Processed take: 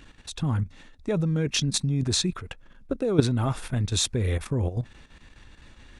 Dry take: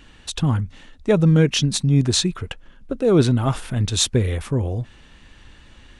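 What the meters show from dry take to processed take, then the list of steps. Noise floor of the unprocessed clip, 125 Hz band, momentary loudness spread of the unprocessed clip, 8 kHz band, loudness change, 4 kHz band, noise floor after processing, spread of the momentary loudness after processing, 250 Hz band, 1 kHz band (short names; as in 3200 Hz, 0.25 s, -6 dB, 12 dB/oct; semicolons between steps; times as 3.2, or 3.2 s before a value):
-49 dBFS, -6.5 dB, 17 LU, -4.5 dB, -6.5 dB, -5.0 dB, -53 dBFS, 15 LU, -7.5 dB, -6.0 dB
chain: notch 3000 Hz, Q 11; level quantiser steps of 12 dB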